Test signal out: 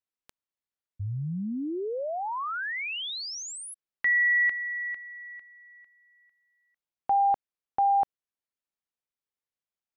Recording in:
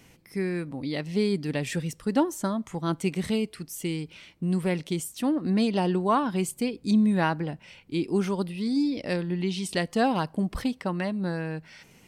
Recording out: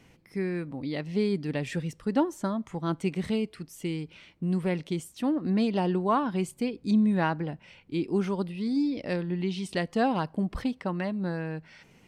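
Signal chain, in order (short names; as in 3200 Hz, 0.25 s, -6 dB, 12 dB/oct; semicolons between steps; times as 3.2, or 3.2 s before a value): LPF 3400 Hz 6 dB/oct; gain -1.5 dB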